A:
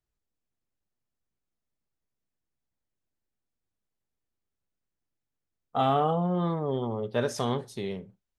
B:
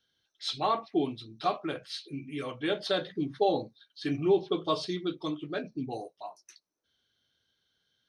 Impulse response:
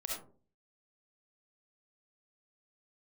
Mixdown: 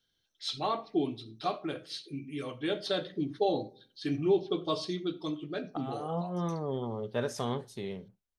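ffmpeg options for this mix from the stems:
-filter_complex "[0:a]volume=0.596[s0];[1:a]equalizer=f=1300:t=o:w=2.6:g=-4.5,volume=0.891,asplit=3[s1][s2][s3];[s2]volume=0.158[s4];[s3]apad=whole_len=369746[s5];[s0][s5]sidechaincompress=threshold=0.00355:ratio=8:attack=16:release=151[s6];[2:a]atrim=start_sample=2205[s7];[s4][s7]afir=irnorm=-1:irlink=0[s8];[s6][s1][s8]amix=inputs=3:normalize=0"

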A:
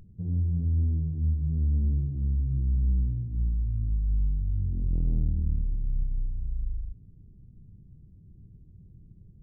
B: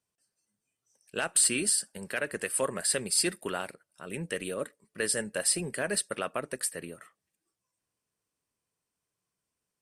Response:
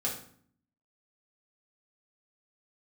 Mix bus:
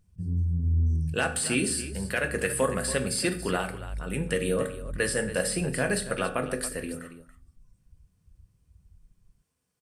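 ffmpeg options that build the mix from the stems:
-filter_complex "[0:a]afwtdn=0.0282,volume=0.944,asplit=2[s0][s1];[s1]volume=0.0891[s2];[1:a]acrossover=split=2800[s3][s4];[s4]acompressor=threshold=0.0282:ratio=4:attack=1:release=60[s5];[s3][s5]amix=inputs=2:normalize=0,equalizer=f=89:t=o:w=1.4:g=9,volume=1,asplit=4[s6][s7][s8][s9];[s7]volume=0.531[s10];[s8]volume=0.316[s11];[s9]apad=whole_len=415424[s12];[s0][s12]sidechaincompress=threshold=0.00141:ratio=8:attack=16:release=251[s13];[2:a]atrim=start_sample=2205[s14];[s2][s10]amix=inputs=2:normalize=0[s15];[s15][s14]afir=irnorm=-1:irlink=0[s16];[s11]aecho=0:1:280:1[s17];[s13][s6][s16][s17]amix=inputs=4:normalize=0"

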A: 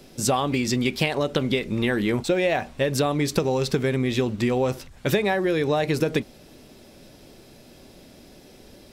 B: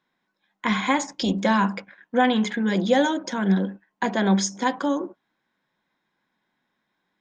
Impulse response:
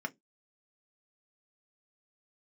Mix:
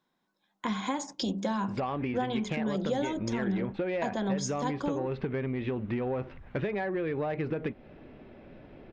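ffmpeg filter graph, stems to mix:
-filter_complex "[0:a]lowpass=f=2400:w=0.5412,lowpass=f=2400:w=1.3066,asoftclip=type=tanh:threshold=0.188,adelay=1500,volume=0.891[s0];[1:a]equalizer=f=2000:w=1.3:g=-8.5,volume=1[s1];[s0][s1]amix=inputs=2:normalize=0,acompressor=threshold=0.0251:ratio=2.5"

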